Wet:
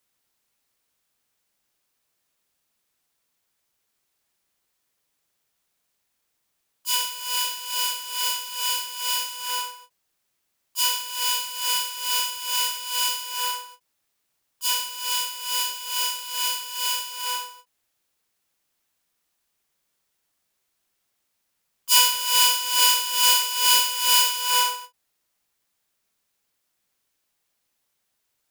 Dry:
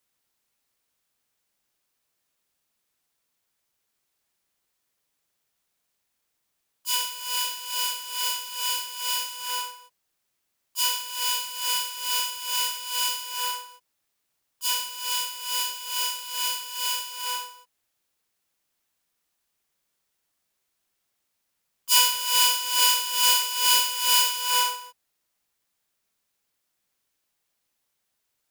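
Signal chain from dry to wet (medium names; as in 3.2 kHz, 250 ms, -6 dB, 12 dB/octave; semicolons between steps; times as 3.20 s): endings held to a fixed fall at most 370 dB/s; trim +2 dB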